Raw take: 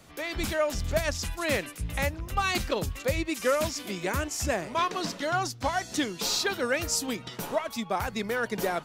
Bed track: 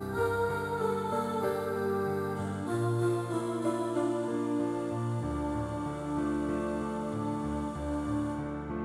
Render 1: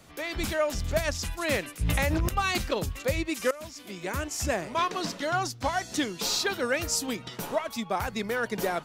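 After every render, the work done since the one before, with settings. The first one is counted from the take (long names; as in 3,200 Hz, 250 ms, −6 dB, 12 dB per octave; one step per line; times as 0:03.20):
0:01.81–0:02.29: envelope flattener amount 100%
0:03.51–0:04.40: fade in, from −19.5 dB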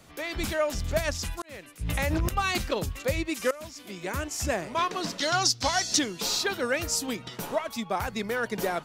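0:01.42–0:02.15: fade in
0:05.18–0:05.99: parametric band 5,100 Hz +14.5 dB 1.5 octaves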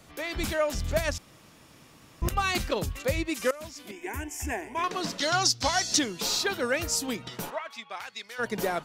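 0:01.18–0:02.22: fill with room tone
0:03.91–0:04.84: phaser with its sweep stopped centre 840 Hz, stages 8
0:07.49–0:08.38: resonant band-pass 1,400 Hz → 5,300 Hz, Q 0.98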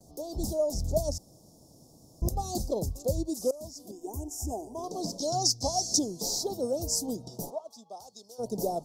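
Chebyshev band-stop filter 740–5,200 Hz, order 3
noise gate with hold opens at −49 dBFS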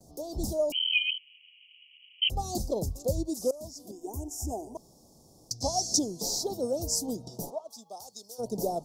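0:00.72–0:02.30: voice inversion scrambler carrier 3,100 Hz
0:04.77–0:05.51: fill with room tone
0:07.69–0:08.41: high-shelf EQ 6,600 Hz +11 dB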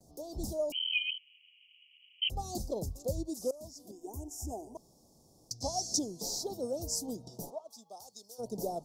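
level −5.5 dB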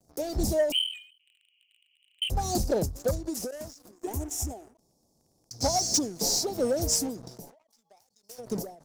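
leveller curve on the samples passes 3
every ending faded ahead of time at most 110 dB per second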